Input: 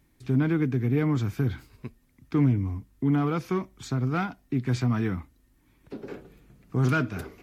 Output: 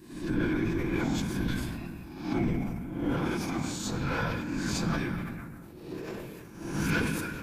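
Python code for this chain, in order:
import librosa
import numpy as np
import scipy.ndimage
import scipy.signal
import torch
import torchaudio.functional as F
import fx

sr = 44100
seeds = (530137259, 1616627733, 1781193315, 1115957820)

p1 = fx.spec_swells(x, sr, rise_s=0.73)
p2 = scipy.signal.sosfilt(scipy.signal.butter(2, 140.0, 'highpass', fs=sr, output='sos'), p1)
p3 = fx.high_shelf(p2, sr, hz=4100.0, db=11.5)
p4 = 10.0 ** (-26.0 / 20.0) * np.tanh(p3 / 10.0 ** (-26.0 / 20.0))
p5 = p3 + (p4 * 10.0 ** (-3.0 / 20.0))
p6 = fx.whisperise(p5, sr, seeds[0])
p7 = p6 + fx.echo_stepped(p6, sr, ms=164, hz=2900.0, octaves=-0.7, feedback_pct=70, wet_db=-11.0, dry=0)
p8 = fx.pitch_keep_formants(p7, sr, semitones=-6.5)
p9 = fx.room_shoebox(p8, sr, seeds[1], volume_m3=1900.0, walls='mixed', distance_m=0.76)
p10 = fx.sustainer(p9, sr, db_per_s=30.0)
y = p10 * 10.0 ** (-7.5 / 20.0)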